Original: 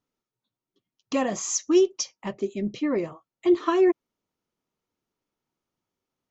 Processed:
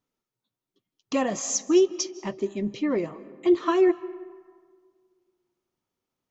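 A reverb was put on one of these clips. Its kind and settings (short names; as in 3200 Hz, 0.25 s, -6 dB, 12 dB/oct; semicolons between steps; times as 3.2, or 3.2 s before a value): digital reverb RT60 1.8 s, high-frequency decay 0.45×, pre-delay 0.12 s, DRR 17.5 dB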